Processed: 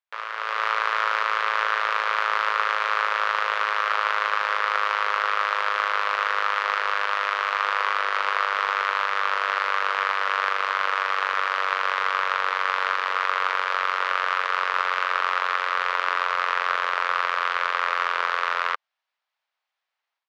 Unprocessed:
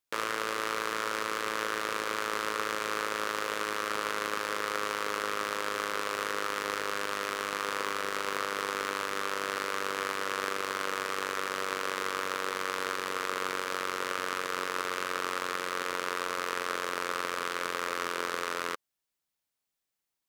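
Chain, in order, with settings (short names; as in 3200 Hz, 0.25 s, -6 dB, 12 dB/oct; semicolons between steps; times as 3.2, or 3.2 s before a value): HPF 690 Hz 24 dB/oct; bell 7700 Hz -2.5 dB 1.8 oct; AGC gain up to 11 dB; air absorption 240 m; gain +1.5 dB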